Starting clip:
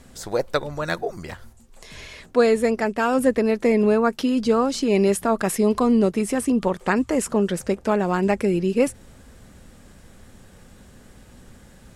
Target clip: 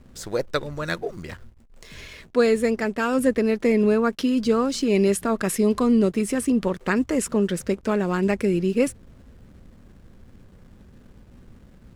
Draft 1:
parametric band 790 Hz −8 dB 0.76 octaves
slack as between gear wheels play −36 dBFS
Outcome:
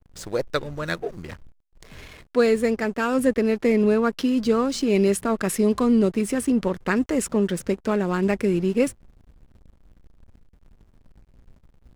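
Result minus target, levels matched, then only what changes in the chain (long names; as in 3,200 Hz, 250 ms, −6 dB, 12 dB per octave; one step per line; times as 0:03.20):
slack as between gear wheels: distortion +8 dB
change: slack as between gear wheels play −45 dBFS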